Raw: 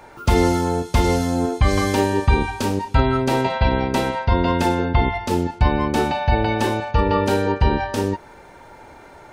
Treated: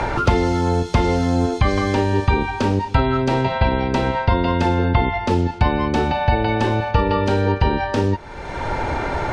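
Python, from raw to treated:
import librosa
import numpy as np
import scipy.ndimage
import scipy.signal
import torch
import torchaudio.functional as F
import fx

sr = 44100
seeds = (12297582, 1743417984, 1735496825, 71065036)

y = scipy.signal.sosfilt(scipy.signal.butter(2, 5000.0, 'lowpass', fs=sr, output='sos'), x)
y = fx.band_squash(y, sr, depth_pct=100)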